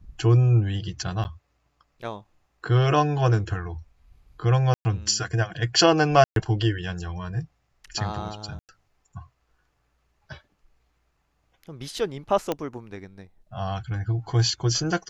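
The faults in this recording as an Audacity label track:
1.240000	1.250000	drop-out 9.9 ms
4.740000	4.850000	drop-out 110 ms
6.240000	6.360000	drop-out 122 ms
8.590000	8.690000	drop-out 98 ms
12.520000	12.520000	click −12 dBFS

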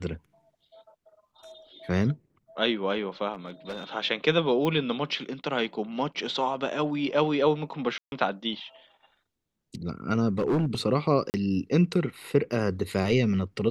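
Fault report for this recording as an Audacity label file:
3.340000	3.890000	clipping −30 dBFS
4.650000	4.650000	click −16 dBFS
7.980000	8.120000	drop-out 141 ms
10.290000	10.750000	clipping −21 dBFS
11.300000	11.340000	drop-out 39 ms

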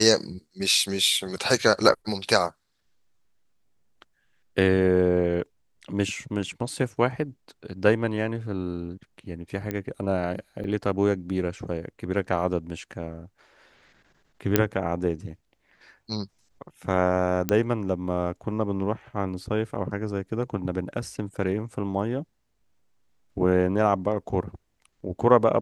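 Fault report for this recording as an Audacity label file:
9.710000	9.710000	click −15 dBFS
10.640000	10.640000	drop-out 3 ms
14.560000	14.560000	click −3 dBFS
17.490000	17.490000	click −8 dBFS

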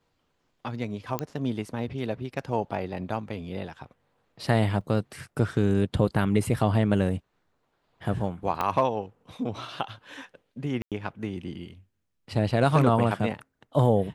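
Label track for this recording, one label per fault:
1.190000	1.190000	click −13 dBFS
4.810000	4.810000	drop-out 4.5 ms
8.610000	8.610000	click −14 dBFS
10.820000	10.920000	drop-out 97 ms

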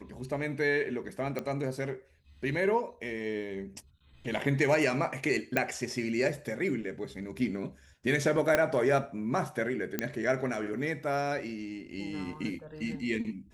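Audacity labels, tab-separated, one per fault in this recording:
1.390000	1.390000	click −20 dBFS
5.570000	5.570000	click −13 dBFS
8.550000	8.550000	click −10 dBFS
9.990000	9.990000	click −14 dBFS

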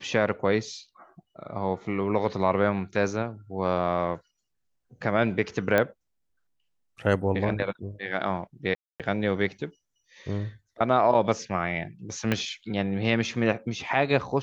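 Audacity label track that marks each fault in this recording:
5.780000	5.780000	click −10 dBFS
8.750000	9.000000	drop-out 247 ms
12.320000	12.320000	click −11 dBFS

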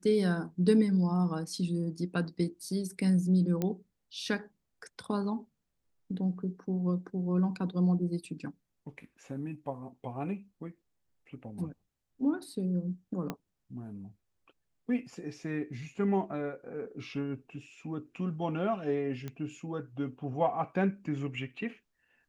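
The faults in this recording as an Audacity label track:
3.620000	3.620000	click −18 dBFS
13.300000	13.300000	click −20 dBFS
19.280000	19.280000	click −25 dBFS

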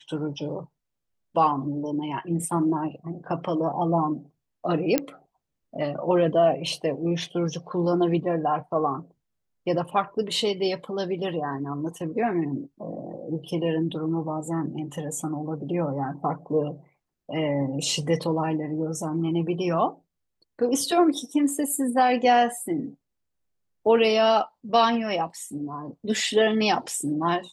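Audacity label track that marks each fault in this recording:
4.980000	4.980000	click −6 dBFS

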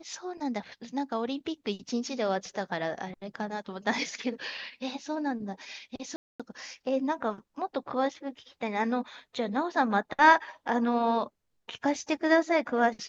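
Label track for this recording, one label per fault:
6.160000	6.400000	drop-out 236 ms

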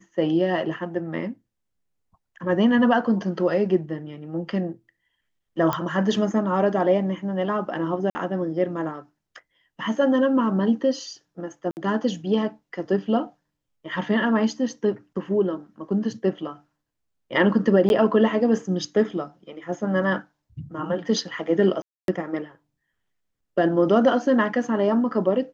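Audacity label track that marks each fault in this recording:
5.730000	5.730000	click −11 dBFS
8.100000	8.150000	drop-out 50 ms
11.710000	11.770000	drop-out 59 ms
17.890000	17.900000	drop-out 11 ms
21.820000	22.080000	drop-out 262 ms

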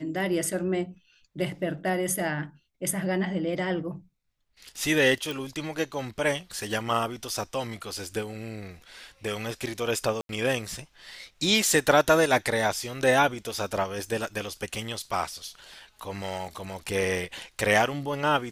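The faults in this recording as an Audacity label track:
5.310000	5.310000	click
10.210000	10.290000	drop-out 82 ms

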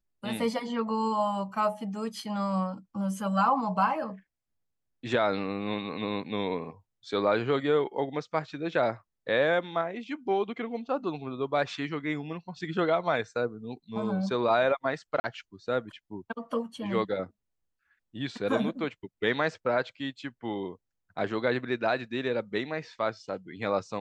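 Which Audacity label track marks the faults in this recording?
15.200000	15.240000	drop-out 40 ms

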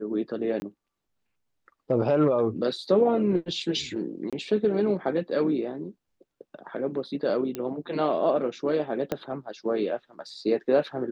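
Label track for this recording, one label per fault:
0.600000	0.620000	drop-out 20 ms
4.300000	4.330000	drop-out 26 ms
7.550000	7.550000	click −17 dBFS
9.120000	9.120000	click −14 dBFS

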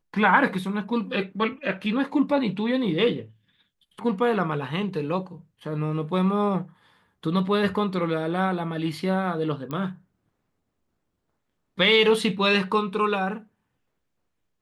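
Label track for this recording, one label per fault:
9.710000	9.710000	click −19 dBFS

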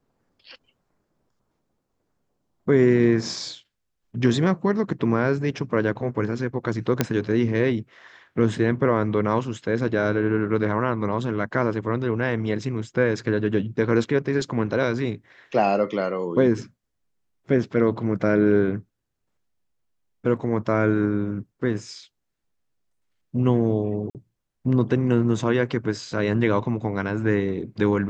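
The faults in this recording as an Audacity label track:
7.010000	7.010000	click −5 dBFS
24.100000	24.150000	drop-out 48 ms

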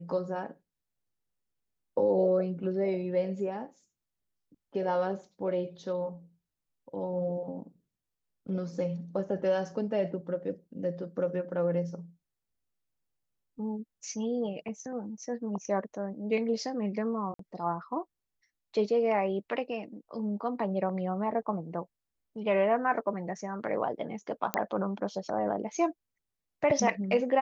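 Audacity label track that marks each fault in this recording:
17.340000	17.390000	drop-out 53 ms
24.540000	24.540000	click −11 dBFS

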